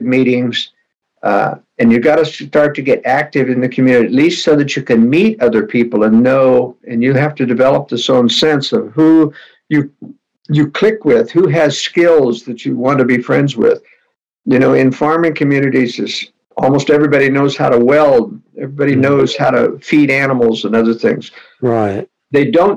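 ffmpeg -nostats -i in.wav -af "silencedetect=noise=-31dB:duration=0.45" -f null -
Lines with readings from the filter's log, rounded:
silence_start: 0.68
silence_end: 1.23 | silence_duration: 0.55
silence_start: 13.78
silence_end: 14.47 | silence_duration: 0.69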